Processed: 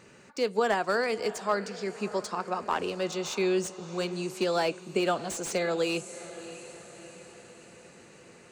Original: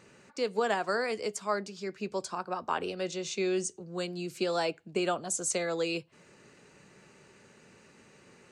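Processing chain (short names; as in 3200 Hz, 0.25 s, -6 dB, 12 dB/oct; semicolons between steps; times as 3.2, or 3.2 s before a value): diffused feedback echo 0.644 s, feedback 54%, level -15.5 dB; slew limiter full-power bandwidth 90 Hz; gain +3 dB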